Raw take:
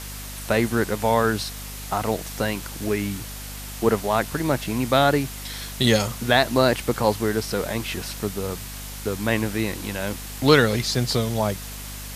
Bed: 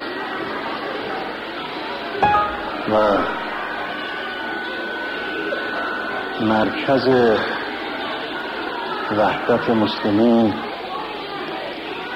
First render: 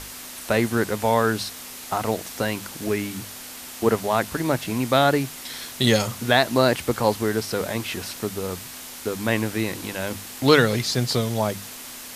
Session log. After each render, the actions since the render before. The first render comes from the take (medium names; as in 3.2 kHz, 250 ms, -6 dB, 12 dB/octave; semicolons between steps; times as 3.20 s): hum notches 50/100/150/200 Hz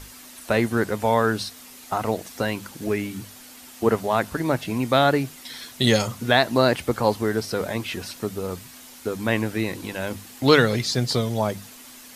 noise reduction 8 dB, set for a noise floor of -38 dBFS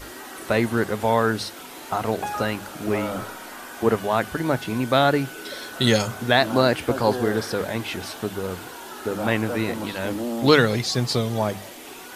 add bed -13.5 dB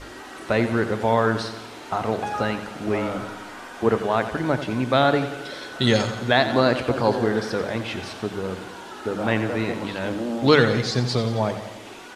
distance through air 68 m; feedback delay 89 ms, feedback 58%, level -11 dB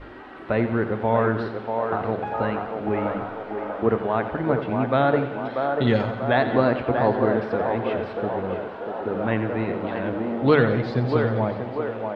distance through air 460 m; band-passed feedback delay 640 ms, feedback 66%, band-pass 690 Hz, level -3.5 dB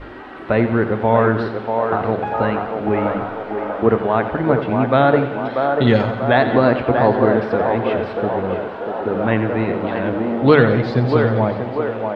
trim +6 dB; peak limiter -1 dBFS, peak gain reduction 3 dB